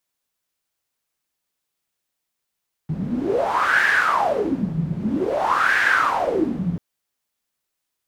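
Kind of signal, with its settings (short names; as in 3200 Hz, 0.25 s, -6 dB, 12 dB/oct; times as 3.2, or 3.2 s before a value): wind-like swept noise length 3.89 s, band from 160 Hz, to 1700 Hz, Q 9.4, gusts 2, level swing 7 dB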